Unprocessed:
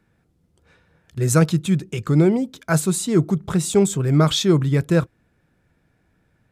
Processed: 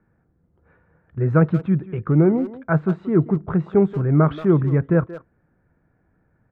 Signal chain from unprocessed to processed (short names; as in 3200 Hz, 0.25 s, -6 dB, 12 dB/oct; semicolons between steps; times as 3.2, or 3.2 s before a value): LPF 1700 Hz 24 dB/oct; speakerphone echo 0.18 s, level -13 dB